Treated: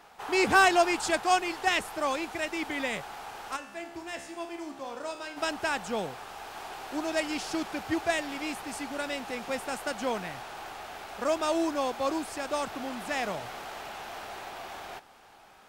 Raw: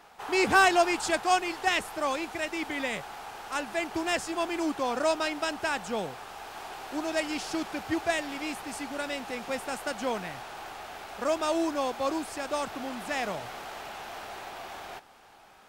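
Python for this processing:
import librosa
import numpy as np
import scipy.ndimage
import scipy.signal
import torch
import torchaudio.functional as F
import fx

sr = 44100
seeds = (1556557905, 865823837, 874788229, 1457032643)

y = fx.comb_fb(x, sr, f0_hz=68.0, decay_s=0.82, harmonics='all', damping=0.0, mix_pct=80, at=(3.55, 5.36), fade=0.02)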